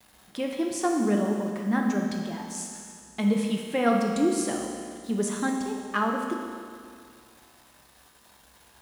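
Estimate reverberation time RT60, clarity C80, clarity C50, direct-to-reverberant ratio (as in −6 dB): 2.2 s, 3.5 dB, 2.0 dB, 0.0 dB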